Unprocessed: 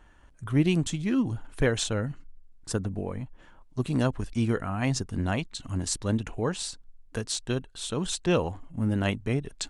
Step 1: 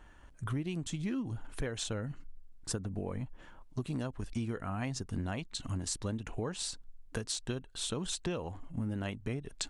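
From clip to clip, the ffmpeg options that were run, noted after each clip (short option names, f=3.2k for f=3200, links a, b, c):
-af "acompressor=threshold=-32dB:ratio=12"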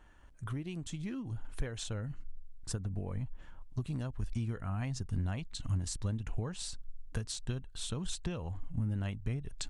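-af "asubboost=boost=3.5:cutoff=160,volume=-4dB"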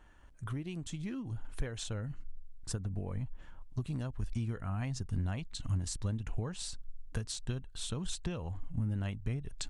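-af anull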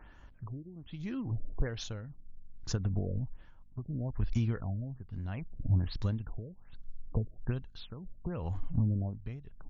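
-af "tremolo=f=0.69:d=0.78,aeval=exprs='val(0)+0.000282*(sin(2*PI*50*n/s)+sin(2*PI*2*50*n/s)/2+sin(2*PI*3*50*n/s)/3+sin(2*PI*4*50*n/s)/4+sin(2*PI*5*50*n/s)/5)':c=same,afftfilt=real='re*lt(b*sr/1024,630*pow(7200/630,0.5+0.5*sin(2*PI*1.2*pts/sr)))':imag='im*lt(b*sr/1024,630*pow(7200/630,0.5+0.5*sin(2*PI*1.2*pts/sr)))':win_size=1024:overlap=0.75,volume=5.5dB"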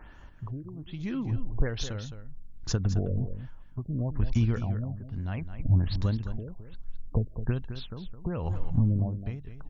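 -af "aecho=1:1:213:0.299,volume=5dB"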